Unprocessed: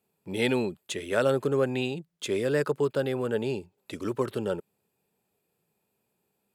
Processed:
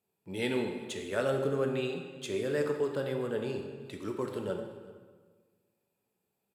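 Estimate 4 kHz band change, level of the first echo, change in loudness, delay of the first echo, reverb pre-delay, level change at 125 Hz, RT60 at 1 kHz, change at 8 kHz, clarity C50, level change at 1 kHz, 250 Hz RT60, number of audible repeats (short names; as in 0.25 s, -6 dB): -5.5 dB, -21.5 dB, -5.0 dB, 0.374 s, 7 ms, -5.0 dB, 1.5 s, -6.0 dB, 5.5 dB, -5.0 dB, 1.6 s, 1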